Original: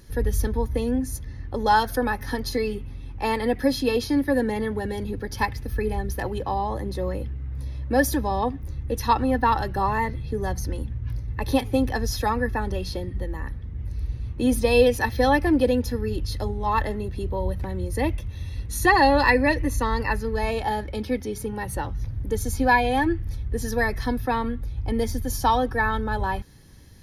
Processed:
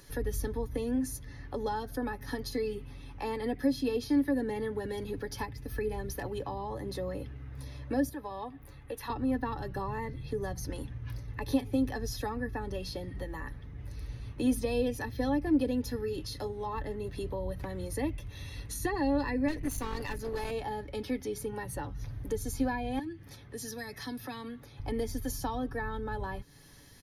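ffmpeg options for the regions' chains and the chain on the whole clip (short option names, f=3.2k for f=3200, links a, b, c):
-filter_complex "[0:a]asettb=1/sr,asplit=3[a][b][c];[a]atrim=end=8.094[d];[b]atrim=start=8.09:end=9.1,asetpts=PTS-STARTPTS,afade=t=in:d=0.004:c=qsin,afade=t=out:st=1.006:d=0.004:c=qsin,equalizer=f=6k:t=o:w=0.91:g=-10,acrossover=split=520|2000[e][f][g];[e]acompressor=threshold=-38dB:ratio=4[h];[f]acompressor=threshold=-28dB:ratio=4[i];[g]acompressor=threshold=-40dB:ratio=4[j];[h][i][j]amix=inputs=3:normalize=0[k];[c]atrim=start=9.096[l];[d][k]acrossfade=d=0.004:c1=hsin:c2=qsin[m];[m][l]acrossfade=d=0.004:c1=qsin:c2=hsin,asettb=1/sr,asplit=3[n][o][p];[n]atrim=end=16.014[q];[o]atrim=start=16.01:end=16.76,asetpts=PTS-STARTPTS,afade=t=in:d=0.004:c=qsin,afade=t=out:st=0.746:d=0.004:c=qsin,highpass=f=100:p=1,asplit=2[r][s];[s]adelay=26,volume=-11dB[t];[r][t]amix=inputs=2:normalize=0,atrim=end_sample=33075[u];[p]atrim=start=16.756[v];[q][u]acrossfade=d=0.004:c1=hsin:c2=qsin[w];[w][v]acrossfade=d=0.004:c1=qsin:c2=hsin,asettb=1/sr,asplit=3[x][y][z];[x]atrim=end=19.484[aa];[y]atrim=start=19.48:end=20.51,asetpts=PTS-STARTPTS,afade=t=in:d=0.004:c=qsin,afade=t=out:st=1.026:d=0.004:c=qsin,highshelf=f=3.8k:g=9,bandreject=f=5.4k:w=17,aeval=exprs='clip(val(0),-1,0.0376)':c=same[ab];[z]atrim=start=20.506[ac];[aa][ab]acrossfade=d=0.004:c1=hsin:c2=qsin[ad];[ad][ac]acrossfade=d=0.004:c1=qsin:c2=hsin,asettb=1/sr,asplit=3[ae][af][ag];[ae]atrim=end=22.994[ah];[af]atrim=start=22.99:end=24.8,asetpts=PTS-STARTPTS,afade=t=in:d=0.004:c=qsin,afade=t=out:st=1.806:d=0.004:c=qsin,highpass=160,highshelf=f=8.4k:g=-4.5,acrossover=split=230|3000[ai][aj][ak];[aj]acompressor=threshold=-44dB:ratio=2.5:attack=3.2:release=140:knee=2.83:detection=peak[al];[ai][al][ak]amix=inputs=3:normalize=0[am];[ag]atrim=start=24.796[an];[ah][am]acrossfade=d=0.004:c1=hsin:c2=qsin[ao];[ao][an]acrossfade=d=0.004:c1=qsin:c2=hsin,lowshelf=f=300:g=-10,aecho=1:1:7:0.39,acrossover=split=370[ap][aq];[aq]acompressor=threshold=-40dB:ratio=4[ar];[ap][ar]amix=inputs=2:normalize=0"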